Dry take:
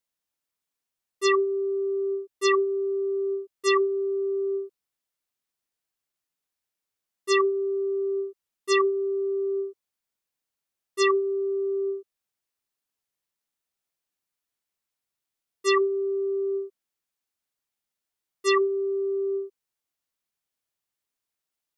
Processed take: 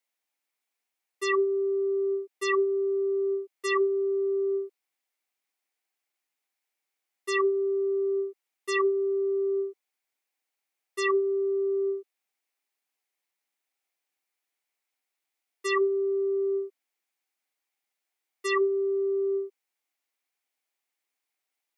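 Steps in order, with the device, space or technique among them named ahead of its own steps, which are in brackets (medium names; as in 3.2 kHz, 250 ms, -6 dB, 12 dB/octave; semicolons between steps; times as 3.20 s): laptop speaker (high-pass 250 Hz 24 dB/octave; peaking EQ 780 Hz +7 dB 0.25 oct; peaking EQ 2.2 kHz +8 dB 0.55 oct; peak limiter -17.5 dBFS, peak gain reduction 9 dB)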